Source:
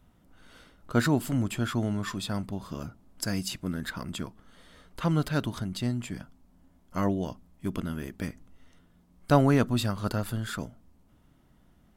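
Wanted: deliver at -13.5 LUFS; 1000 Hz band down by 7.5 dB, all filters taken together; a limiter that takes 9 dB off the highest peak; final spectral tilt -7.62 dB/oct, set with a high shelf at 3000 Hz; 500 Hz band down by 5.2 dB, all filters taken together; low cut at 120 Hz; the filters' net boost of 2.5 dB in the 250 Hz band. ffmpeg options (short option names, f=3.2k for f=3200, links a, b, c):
-af "highpass=120,equalizer=f=250:t=o:g=5.5,equalizer=f=500:t=o:g=-6.5,equalizer=f=1k:t=o:g=-7.5,highshelf=f=3k:g=-7.5,volume=18.5dB,alimiter=limit=-1dB:level=0:latency=1"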